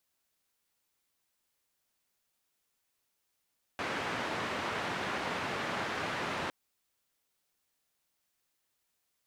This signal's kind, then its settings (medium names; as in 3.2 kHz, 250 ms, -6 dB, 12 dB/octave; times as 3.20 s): noise band 110–1800 Hz, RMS -35.5 dBFS 2.71 s